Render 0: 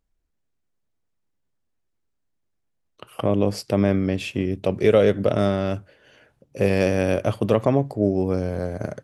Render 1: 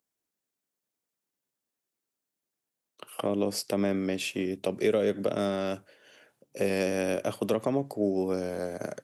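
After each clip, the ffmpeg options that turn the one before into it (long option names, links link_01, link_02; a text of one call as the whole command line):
ffmpeg -i in.wav -filter_complex "[0:a]highpass=230,highshelf=frequency=5700:gain=12,acrossover=split=350[link_01][link_02];[link_02]acompressor=threshold=-23dB:ratio=6[link_03];[link_01][link_03]amix=inputs=2:normalize=0,volume=-4dB" out.wav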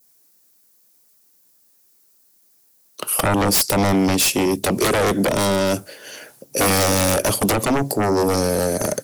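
ffmpeg -i in.wav -af "aexciter=amount=2.5:drive=6:freq=4400,aeval=exprs='0.237*sin(PI/2*5.01*val(0)/0.237)':channel_layout=same,adynamicequalizer=threshold=0.0282:dfrequency=1400:dqfactor=0.73:tfrequency=1400:tqfactor=0.73:attack=5:release=100:ratio=0.375:range=2.5:mode=cutabove:tftype=bell" out.wav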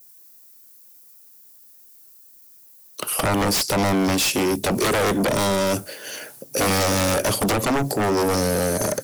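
ffmpeg -i in.wav -filter_complex "[0:a]acrossover=split=7100[link_01][link_02];[link_02]acompressor=threshold=-32dB:ratio=4:attack=1:release=60[link_03];[link_01][link_03]amix=inputs=2:normalize=0,highshelf=frequency=11000:gain=7.5,aeval=exprs='0.282*(cos(1*acos(clip(val(0)/0.282,-1,1)))-cos(1*PI/2))+0.0447*(cos(5*acos(clip(val(0)/0.282,-1,1)))-cos(5*PI/2))':channel_layout=same,volume=-2.5dB" out.wav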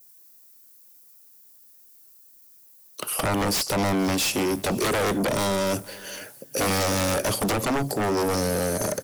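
ffmpeg -i in.wav -af "aecho=1:1:476:0.0708,volume=-3.5dB" out.wav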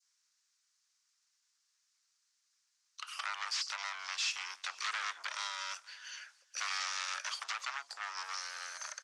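ffmpeg -i in.wav -af "asuperpass=centerf=2800:order=8:qfactor=0.51,volume=-8dB" out.wav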